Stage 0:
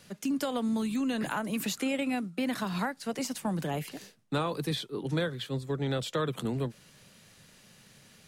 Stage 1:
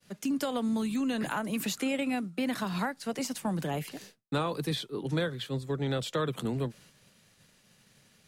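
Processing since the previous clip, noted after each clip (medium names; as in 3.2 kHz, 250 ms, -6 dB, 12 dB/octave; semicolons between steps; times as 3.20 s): expander -51 dBFS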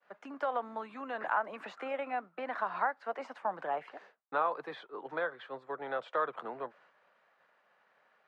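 Butterworth band-pass 990 Hz, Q 1; trim +4 dB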